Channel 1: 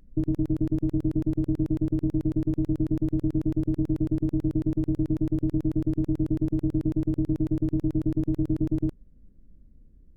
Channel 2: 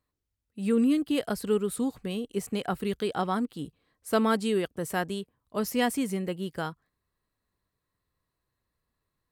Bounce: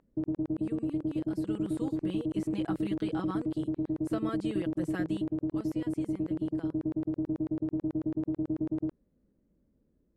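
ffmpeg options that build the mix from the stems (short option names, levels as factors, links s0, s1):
-filter_complex "[0:a]bandpass=f=800:t=q:w=0.71:csg=0,volume=1.06[s0];[1:a]lowpass=10000,aecho=1:1:6.1:0.8,acrossover=split=190[s1][s2];[s2]acompressor=threshold=0.0501:ratio=6[s3];[s1][s3]amix=inputs=2:normalize=0,volume=0.376,afade=t=in:st=1.28:d=0.53:silence=0.316228,afade=t=out:st=5.27:d=0.44:silence=0.281838[s4];[s0][s4]amix=inputs=2:normalize=0,acrossover=split=3100[s5][s6];[s6]acompressor=threshold=0.00224:ratio=4:attack=1:release=60[s7];[s5][s7]amix=inputs=2:normalize=0"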